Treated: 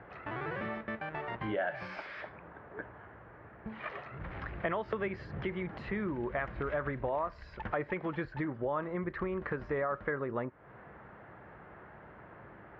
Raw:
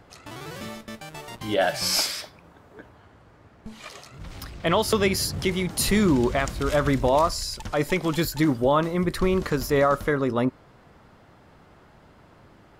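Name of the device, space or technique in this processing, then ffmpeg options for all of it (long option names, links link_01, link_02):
bass amplifier: -af "acompressor=threshold=-33dB:ratio=6,highpass=63,equalizer=frequency=89:width_type=q:width=4:gain=-8,equalizer=frequency=160:width_type=q:width=4:gain=-4,equalizer=frequency=260:width_type=q:width=4:gain=-7,equalizer=frequency=1700:width_type=q:width=4:gain=5,lowpass=frequency=2200:width=0.5412,lowpass=frequency=2200:width=1.3066,volume=2dB"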